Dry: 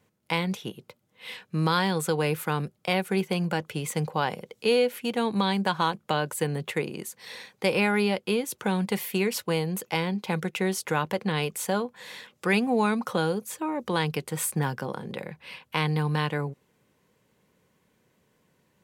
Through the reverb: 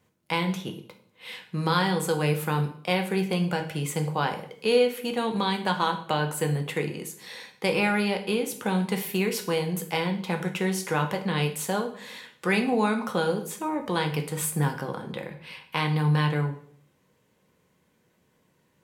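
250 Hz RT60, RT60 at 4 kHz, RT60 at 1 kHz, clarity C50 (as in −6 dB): 0.75 s, 0.50 s, 0.55 s, 10.5 dB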